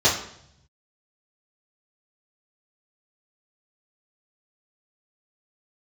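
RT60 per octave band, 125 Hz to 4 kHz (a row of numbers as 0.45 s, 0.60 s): 1.5 s, 0.90 s, 0.70 s, 0.65 s, 0.65 s, 0.65 s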